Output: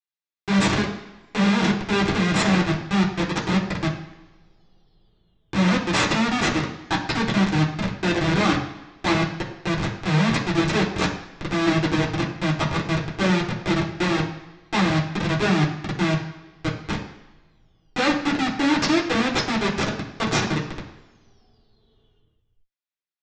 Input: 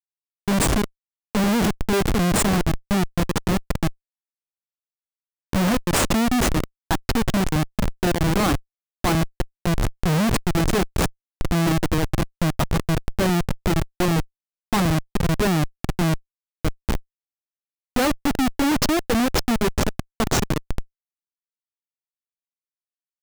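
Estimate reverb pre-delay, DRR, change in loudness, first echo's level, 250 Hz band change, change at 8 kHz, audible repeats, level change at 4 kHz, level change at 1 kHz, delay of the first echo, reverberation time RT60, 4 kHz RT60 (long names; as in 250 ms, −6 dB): 3 ms, −4.0 dB, 0.0 dB, no echo audible, 0.0 dB, −6.0 dB, no echo audible, +2.0 dB, +0.5 dB, no echo audible, 1.3 s, 2.6 s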